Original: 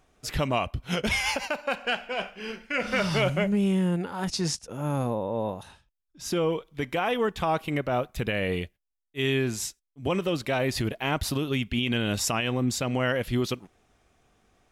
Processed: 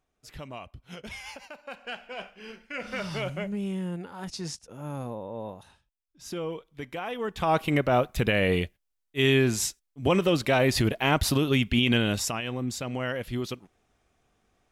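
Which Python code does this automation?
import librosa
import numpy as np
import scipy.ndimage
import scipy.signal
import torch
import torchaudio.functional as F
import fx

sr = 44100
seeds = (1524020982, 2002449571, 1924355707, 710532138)

y = fx.gain(x, sr, db=fx.line((1.52, -14.5), (2.08, -7.5), (7.18, -7.5), (7.58, 4.0), (11.95, 4.0), (12.38, -5.0)))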